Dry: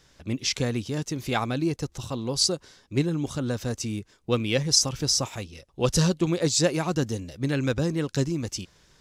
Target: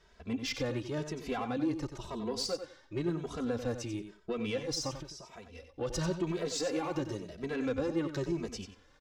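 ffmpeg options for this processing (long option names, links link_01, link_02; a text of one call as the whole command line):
ffmpeg -i in.wav -filter_complex "[0:a]asettb=1/sr,asplit=3[link_01][link_02][link_03];[link_01]atrim=end=6.264[link_04];[link_02]atrim=start=6.26:end=7.01,asetpts=PTS-STARTPTS,afade=type=in:duration=0.004:curve=qsin,afade=type=out:start_time=0.746:duration=0.004:curve=qsin,aeval=exprs='val(0)+0.5*0.0126*sgn(val(0))':channel_layout=same[link_05];[link_03]atrim=start=7.006[link_06];[link_04][link_05]acrossfade=duration=0.004:curve1=hsin:curve2=qsin[link_07];[link_07][link_06]acrossfade=duration=0.004:curve1=qsin:curve2=hsin,lowpass=frequency=1300:poles=1,equalizer=frequency=130:width=0.69:gain=-12.5,alimiter=level_in=1dB:limit=-24dB:level=0:latency=1:release=84,volume=-1dB,asettb=1/sr,asplit=3[link_08][link_09][link_10];[link_08]atrim=end=4.914[link_11];[link_09]atrim=start=4.91:end=5.54,asetpts=PTS-STARTPTS,afade=type=in:duration=0.004:curve=qsin,afade=type=out:start_time=0.626:duration=0.004:curve=qsin,acompressor=threshold=-46dB:ratio=12[link_12];[link_10]atrim=start=5.536[link_13];[link_11][link_12]acrossfade=duration=0.004:curve1=hsin:curve2=qsin[link_14];[link_14][link_13]acrossfade=duration=0.004:curve1=qsin:curve2=hsin,asoftclip=type=tanh:threshold=-27.5dB,asettb=1/sr,asplit=3[link_15][link_16][link_17];[link_15]atrim=end=1.574[link_18];[link_16]atrim=start=1.57:end=2.43,asetpts=PTS-STARTPTS,afade=type=in:duration=0.004:curve=qsin,afade=type=out:start_time=0.856:duration=0.004:curve=qsin,afreqshift=-13[link_19];[link_17]atrim=start=2.426[link_20];[link_18][link_19]acrossfade=duration=0.004:curve1=hsin:curve2=qsin[link_21];[link_21][link_20]acrossfade=duration=0.004:curve1=qsin:curve2=hsin,aecho=1:1:92|184:0.335|0.0569,asplit=2[link_22][link_23];[link_23]adelay=2.7,afreqshift=0.96[link_24];[link_22][link_24]amix=inputs=2:normalize=1,volume=4.5dB" out.wav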